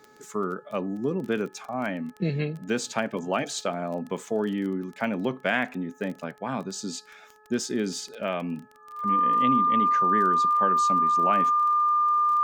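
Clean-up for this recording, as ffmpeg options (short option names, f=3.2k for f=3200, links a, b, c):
-af "adeclick=t=4,bandreject=f=427.3:t=h:w=4,bandreject=f=854.6:t=h:w=4,bandreject=f=1.2819k:t=h:w=4,bandreject=f=1.7092k:t=h:w=4,bandreject=f=1.2k:w=30"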